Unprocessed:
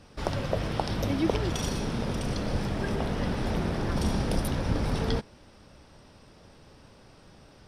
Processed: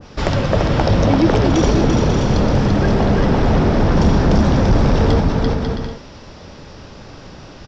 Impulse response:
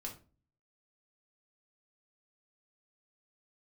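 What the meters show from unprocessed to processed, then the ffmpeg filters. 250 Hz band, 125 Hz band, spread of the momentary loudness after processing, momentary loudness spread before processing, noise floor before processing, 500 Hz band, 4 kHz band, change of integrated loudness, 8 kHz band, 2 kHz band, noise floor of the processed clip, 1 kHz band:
+15.0 dB, +15.0 dB, 6 LU, 4 LU, -55 dBFS, +14.5 dB, +10.0 dB, +14.0 dB, +8.0 dB, +12.0 dB, -38 dBFS, +14.0 dB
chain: -af "aecho=1:1:340|544|666.4|739.8|783.9:0.631|0.398|0.251|0.158|0.1,aresample=16000,aeval=exprs='0.422*sin(PI/2*2.82*val(0)/0.422)':c=same,aresample=44100,adynamicequalizer=threshold=0.02:dfrequency=1600:dqfactor=0.7:tfrequency=1600:tqfactor=0.7:attack=5:release=100:ratio=0.375:range=3:mode=cutabove:tftype=highshelf,volume=1dB"

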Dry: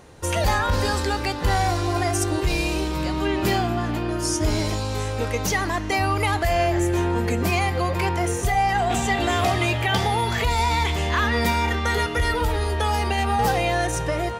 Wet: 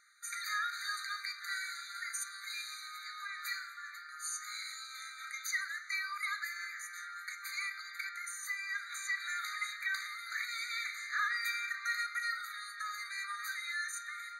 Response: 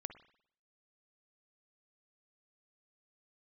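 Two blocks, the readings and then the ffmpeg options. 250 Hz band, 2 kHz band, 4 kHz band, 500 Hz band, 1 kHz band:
under -40 dB, -9.0 dB, -13.0 dB, under -40 dB, -20.5 dB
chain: -filter_complex "[1:a]atrim=start_sample=2205,asetrate=74970,aresample=44100[a];[0:a][a]afir=irnorm=-1:irlink=0,afftfilt=real='re*eq(mod(floor(b*sr/1024/1200),2),1)':imag='im*eq(mod(floor(b*sr/1024/1200),2),1)':win_size=1024:overlap=0.75"

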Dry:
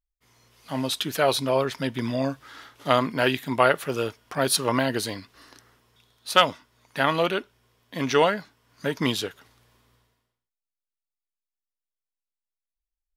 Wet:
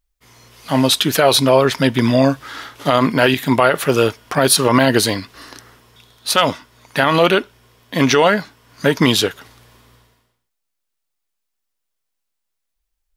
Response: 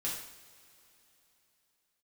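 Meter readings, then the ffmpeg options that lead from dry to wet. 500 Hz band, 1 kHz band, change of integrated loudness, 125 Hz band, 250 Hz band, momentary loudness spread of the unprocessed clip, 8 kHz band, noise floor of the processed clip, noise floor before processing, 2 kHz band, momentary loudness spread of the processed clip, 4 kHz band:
+9.0 dB, +7.0 dB, +9.0 dB, +11.5 dB, +11.5 dB, 12 LU, +11.5 dB, -76 dBFS, under -85 dBFS, +8.5 dB, 10 LU, +9.5 dB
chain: -af "alimiter=level_in=14dB:limit=-1dB:release=50:level=0:latency=1,volume=-1dB"

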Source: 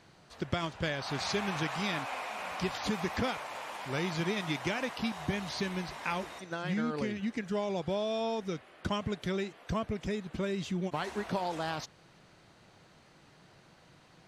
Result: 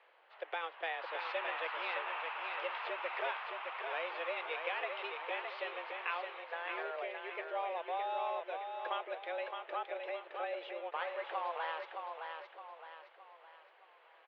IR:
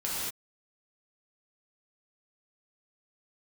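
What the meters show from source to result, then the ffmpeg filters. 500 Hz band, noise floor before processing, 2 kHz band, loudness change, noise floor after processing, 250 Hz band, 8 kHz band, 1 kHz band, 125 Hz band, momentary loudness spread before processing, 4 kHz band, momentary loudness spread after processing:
-5.0 dB, -60 dBFS, -1.5 dB, -5.0 dB, -63 dBFS, -24.5 dB, under -35 dB, -0.5 dB, under -40 dB, 5 LU, -7.5 dB, 8 LU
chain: -af "aecho=1:1:616|1232|1848|2464|3080:0.531|0.228|0.0982|0.0422|0.0181,highpass=f=310:t=q:w=0.5412,highpass=f=310:t=q:w=1.307,lowpass=f=2.9k:t=q:w=0.5176,lowpass=f=2.9k:t=q:w=0.7071,lowpass=f=2.9k:t=q:w=1.932,afreqshift=170,crystalizer=i=1.5:c=0,volume=-4.5dB"

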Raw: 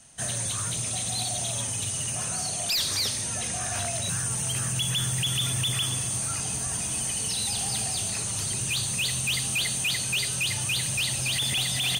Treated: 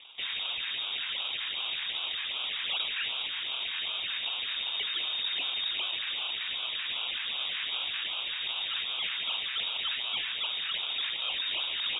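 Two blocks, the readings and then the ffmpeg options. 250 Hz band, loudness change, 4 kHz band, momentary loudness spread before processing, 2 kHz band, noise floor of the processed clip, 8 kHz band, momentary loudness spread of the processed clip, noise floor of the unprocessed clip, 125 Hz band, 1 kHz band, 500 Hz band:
under -20 dB, -5.0 dB, 0.0 dB, 3 LU, -1.5 dB, -36 dBFS, under -40 dB, 2 LU, -31 dBFS, under -30 dB, -5.0 dB, -11.0 dB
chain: -af "acrusher=samples=18:mix=1:aa=0.000001:lfo=1:lforange=10.8:lforate=2.6,alimiter=level_in=5.5dB:limit=-24dB:level=0:latency=1,volume=-5.5dB,lowpass=f=3.2k:t=q:w=0.5098,lowpass=f=3.2k:t=q:w=0.6013,lowpass=f=3.2k:t=q:w=0.9,lowpass=f=3.2k:t=q:w=2.563,afreqshift=-3800,volume=1.5dB"

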